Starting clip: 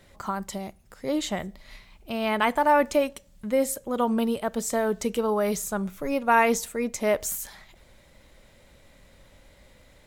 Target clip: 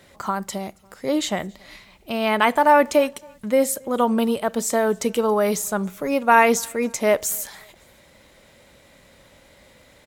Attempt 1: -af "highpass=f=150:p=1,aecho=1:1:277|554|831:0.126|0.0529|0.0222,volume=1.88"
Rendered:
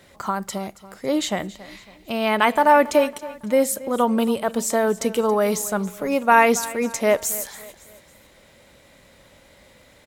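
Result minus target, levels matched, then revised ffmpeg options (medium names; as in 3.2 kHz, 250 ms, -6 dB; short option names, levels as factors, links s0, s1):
echo-to-direct +11 dB
-af "highpass=f=150:p=1,aecho=1:1:277|554:0.0355|0.0149,volume=1.88"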